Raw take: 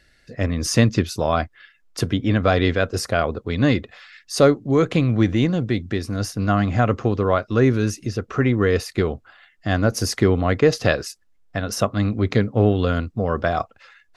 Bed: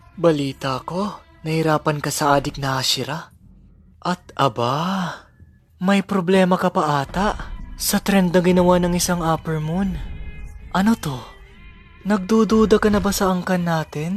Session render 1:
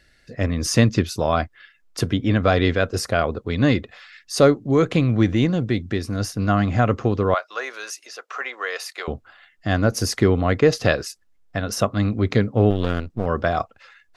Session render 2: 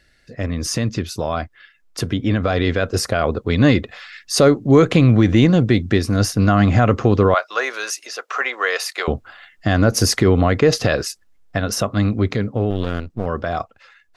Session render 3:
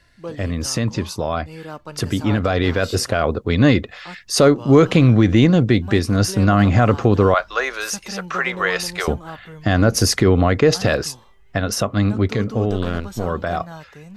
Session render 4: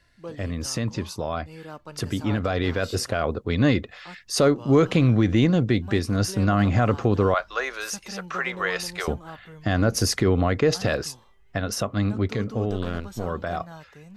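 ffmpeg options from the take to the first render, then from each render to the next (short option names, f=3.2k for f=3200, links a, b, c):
-filter_complex "[0:a]asettb=1/sr,asplit=3[a][b][c];[a]atrim=end=7.344[d];[b]atrim=start=7.34:end=9.08,asetpts=PTS-STARTPTS,afade=t=in:d=0.004:c=qsin,afade=t=out:st=1.736:d=0.004:c=qsin,highpass=f=670:w=0.5412,highpass=f=670:w=1.3066[e];[c]atrim=start=9.076[f];[d][e]acrossfade=d=0.004:c1=hsin:c2=qsin[g];[g][f]acrossfade=d=0.004:c1=qsin:c2=hsin,asettb=1/sr,asplit=3[h][i][j];[h]atrim=end=12.704[k];[i]atrim=start=12.7:end=13.26,asetpts=PTS-STARTPTS,afade=t=in:d=0.004:c=qsin,afade=t=out:st=0.556:d=0.004:c=qsin,aeval=exprs='if(lt(val(0),0),0.251*val(0),val(0))':c=same[l];[j]atrim=start=13.256[m];[k][l]acrossfade=d=0.004:c1=hsin:c2=qsin[n];[n][m]acrossfade=d=0.004:c1=qsin:c2=hsin"
-af "alimiter=limit=-10.5dB:level=0:latency=1:release=59,dynaudnorm=f=350:g=17:m=9dB"
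-filter_complex "[1:a]volume=-16dB[a];[0:a][a]amix=inputs=2:normalize=0"
-af "volume=-6dB"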